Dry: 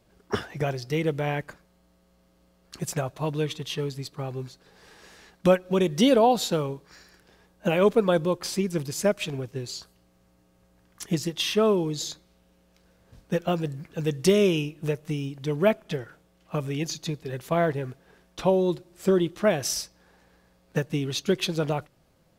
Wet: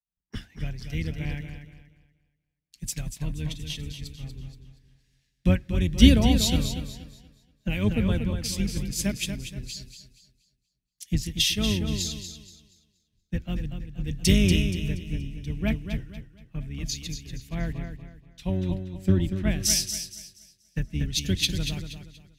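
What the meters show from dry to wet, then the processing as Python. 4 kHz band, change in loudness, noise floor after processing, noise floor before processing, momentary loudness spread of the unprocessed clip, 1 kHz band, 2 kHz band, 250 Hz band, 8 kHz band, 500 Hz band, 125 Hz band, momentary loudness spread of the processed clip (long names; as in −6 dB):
+3.5 dB, −0.5 dB, −77 dBFS, −63 dBFS, 13 LU, −13.5 dB, −1.5 dB, +1.0 dB, +4.5 dB, −12.5 dB, +3.5 dB, 18 LU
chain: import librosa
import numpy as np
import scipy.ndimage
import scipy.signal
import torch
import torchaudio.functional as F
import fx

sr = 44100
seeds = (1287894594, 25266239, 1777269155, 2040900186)

p1 = fx.octave_divider(x, sr, octaves=2, level_db=-1.0)
p2 = fx.band_shelf(p1, sr, hz=710.0, db=-15.5, octaves=2.3)
p3 = p2 + fx.echo_feedback(p2, sr, ms=238, feedback_pct=54, wet_db=-5, dry=0)
p4 = fx.band_widen(p3, sr, depth_pct=100)
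y = F.gain(torch.from_numpy(p4), -2.0).numpy()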